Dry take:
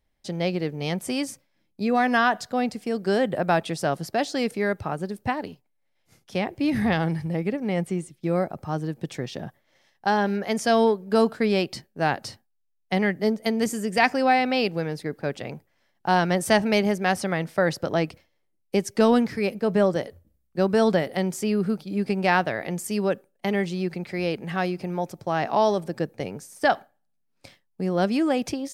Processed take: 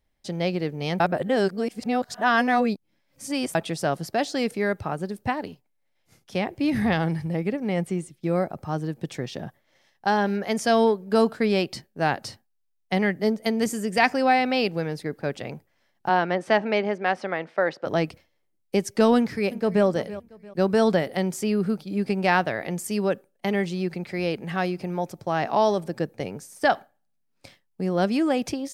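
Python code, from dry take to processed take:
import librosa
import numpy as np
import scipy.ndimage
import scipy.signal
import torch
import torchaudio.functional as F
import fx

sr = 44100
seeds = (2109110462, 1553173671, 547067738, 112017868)

y = fx.bandpass_edges(x, sr, low_hz=fx.line((16.08, 240.0), (17.85, 380.0)), high_hz=2800.0, at=(16.08, 17.85), fade=0.02)
y = fx.echo_throw(y, sr, start_s=19.17, length_s=0.68, ms=340, feedback_pct=35, wet_db=-15.5)
y = fx.edit(y, sr, fx.reverse_span(start_s=1.0, length_s=2.55), tone=tone)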